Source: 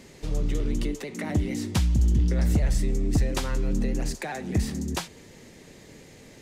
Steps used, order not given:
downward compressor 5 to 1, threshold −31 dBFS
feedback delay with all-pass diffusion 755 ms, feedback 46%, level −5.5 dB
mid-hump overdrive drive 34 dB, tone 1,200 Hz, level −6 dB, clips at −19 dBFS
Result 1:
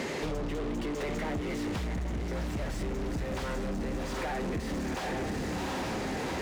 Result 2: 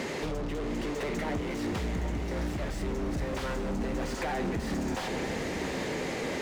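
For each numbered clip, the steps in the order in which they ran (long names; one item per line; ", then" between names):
feedback delay with all-pass diffusion, then mid-hump overdrive, then downward compressor
mid-hump overdrive, then downward compressor, then feedback delay with all-pass diffusion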